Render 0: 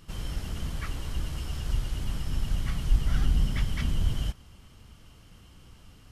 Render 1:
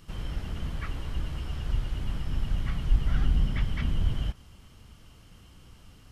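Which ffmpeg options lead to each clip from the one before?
ffmpeg -i in.wav -filter_complex "[0:a]acrossover=split=3600[link_01][link_02];[link_02]acompressor=threshold=-59dB:ratio=4:attack=1:release=60[link_03];[link_01][link_03]amix=inputs=2:normalize=0" out.wav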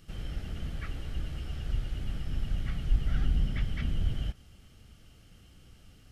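ffmpeg -i in.wav -af "equalizer=frequency=1000:width=5.6:gain=-14.5,volume=-3dB" out.wav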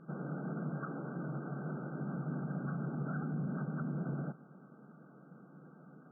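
ffmpeg -i in.wav -af "afftfilt=real='re*between(b*sr/4096,130,1600)':imag='im*between(b*sr/4096,130,1600)':win_size=4096:overlap=0.75,alimiter=level_in=13dB:limit=-24dB:level=0:latency=1:release=50,volume=-13dB,volume=7dB" out.wav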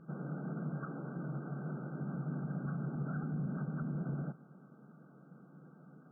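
ffmpeg -i in.wav -af "equalizer=frequency=66:width_type=o:width=1.7:gain=10.5,volume=-3dB" out.wav

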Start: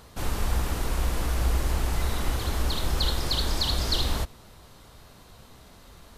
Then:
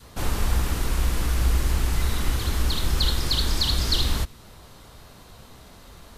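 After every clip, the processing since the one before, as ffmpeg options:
ffmpeg -i in.wav -af "adynamicequalizer=threshold=0.00316:dfrequency=660:dqfactor=0.99:tfrequency=660:tqfactor=0.99:attack=5:release=100:ratio=0.375:range=3.5:mode=cutabove:tftype=bell,volume=3.5dB" out.wav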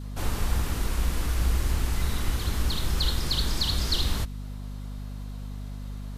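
ffmpeg -i in.wav -af "aeval=exprs='val(0)+0.0282*(sin(2*PI*50*n/s)+sin(2*PI*2*50*n/s)/2+sin(2*PI*3*50*n/s)/3+sin(2*PI*4*50*n/s)/4+sin(2*PI*5*50*n/s)/5)':channel_layout=same,volume=-3.5dB" out.wav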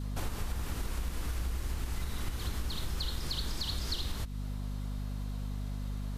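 ffmpeg -i in.wav -af "acompressor=threshold=-31dB:ratio=6" out.wav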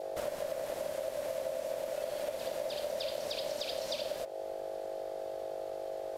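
ffmpeg -i in.wav -af "aeval=exprs='val(0)*sin(2*PI*590*n/s)':channel_layout=same,bandreject=frequency=92.3:width_type=h:width=4,bandreject=frequency=184.6:width_type=h:width=4,bandreject=frequency=276.9:width_type=h:width=4,bandreject=frequency=369.2:width_type=h:width=4,bandreject=frequency=461.5:width_type=h:width=4,bandreject=frequency=553.8:width_type=h:width=4,bandreject=frequency=646.1:width_type=h:width=4,bandreject=frequency=738.4:width_type=h:width=4,bandreject=frequency=830.7:width_type=h:width=4,bandreject=frequency=923:width_type=h:width=4,bandreject=frequency=1015.3:width_type=h:width=4,bandreject=frequency=1107.6:width_type=h:width=4,bandreject=frequency=1199.9:width_type=h:width=4,bandreject=frequency=1292.2:width_type=h:width=4,bandreject=frequency=1384.5:width_type=h:width=4,bandreject=frequency=1476.8:width_type=h:width=4,bandreject=frequency=1569.1:width_type=h:width=4,bandreject=frequency=1661.4:width_type=h:width=4,bandreject=frequency=1753.7:width_type=h:width=4,bandreject=frequency=1846:width_type=h:width=4,bandreject=frequency=1938.3:width_type=h:width=4,bandreject=frequency=2030.6:width_type=h:width=4,bandreject=frequency=2122.9:width_type=h:width=4,bandreject=frequency=2215.2:width_type=h:width=4,bandreject=frequency=2307.5:width_type=h:width=4,bandreject=frequency=2399.8:width_type=h:width=4,bandreject=frequency=2492.1:width_type=h:width=4,bandreject=frequency=2584.4:width_type=h:width=4,bandreject=frequency=2676.7:width_type=h:width=4" out.wav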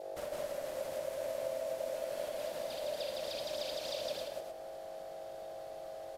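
ffmpeg -i in.wav -af "aecho=1:1:46.65|160.3|268.2:0.316|0.794|0.501,volume=-5dB" out.wav

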